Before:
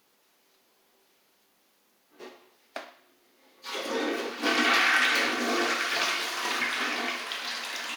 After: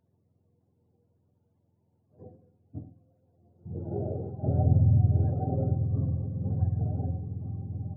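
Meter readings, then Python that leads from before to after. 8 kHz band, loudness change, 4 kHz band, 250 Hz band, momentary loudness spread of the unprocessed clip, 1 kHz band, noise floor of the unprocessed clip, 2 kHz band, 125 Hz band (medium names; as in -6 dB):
under -40 dB, -2.0 dB, under -40 dB, +1.0 dB, 18 LU, -13.5 dB, -68 dBFS, under -40 dB, no reading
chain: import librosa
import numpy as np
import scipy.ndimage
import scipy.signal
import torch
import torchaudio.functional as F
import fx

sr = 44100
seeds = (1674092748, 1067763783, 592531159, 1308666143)

y = fx.octave_mirror(x, sr, pivot_hz=430.0)
y = y * librosa.db_to_amplitude(-2.0)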